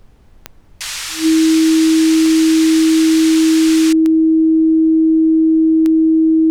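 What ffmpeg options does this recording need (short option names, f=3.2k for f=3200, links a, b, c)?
-af "adeclick=t=4,bandreject=f=320:w=30,agate=range=-21dB:threshold=-33dB"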